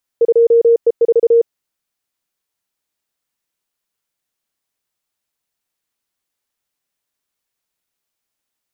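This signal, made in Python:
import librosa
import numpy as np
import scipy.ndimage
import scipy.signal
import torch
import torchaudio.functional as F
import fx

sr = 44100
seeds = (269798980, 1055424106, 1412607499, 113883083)

y = fx.morse(sr, text='2E4', wpm=33, hz=465.0, level_db=-6.5)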